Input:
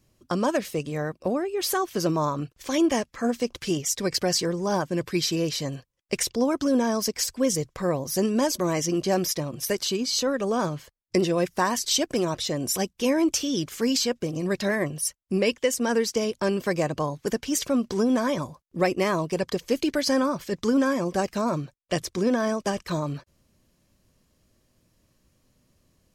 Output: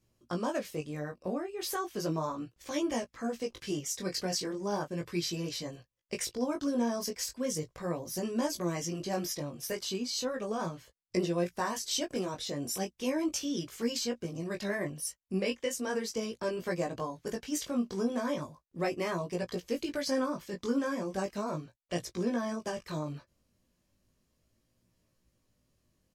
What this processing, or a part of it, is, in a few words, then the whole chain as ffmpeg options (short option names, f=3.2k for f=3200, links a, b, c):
double-tracked vocal: -filter_complex "[0:a]asplit=2[a][b];[b]adelay=17,volume=-13dB[c];[a][c]amix=inputs=2:normalize=0,flanger=delay=17:depth=4.2:speed=0.36,volume=-6dB"